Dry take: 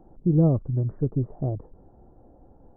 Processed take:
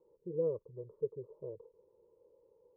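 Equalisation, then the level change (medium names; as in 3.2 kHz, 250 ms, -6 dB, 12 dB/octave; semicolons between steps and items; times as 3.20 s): elliptic band-pass 460–950 Hz, stop band 40 dB; Butterworth band-stop 730 Hz, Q 0.52; +13.0 dB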